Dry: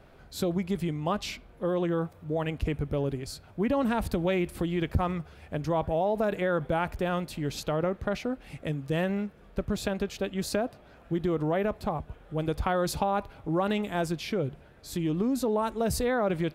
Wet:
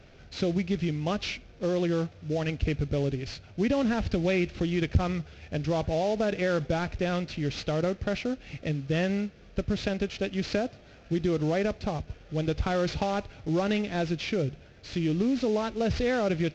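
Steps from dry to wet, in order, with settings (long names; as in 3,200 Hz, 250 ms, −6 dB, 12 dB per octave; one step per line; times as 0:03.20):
variable-slope delta modulation 32 kbit/s
graphic EQ with 15 bands 100 Hz +4 dB, 1,000 Hz −9 dB, 2,500 Hz +4 dB
level +1.5 dB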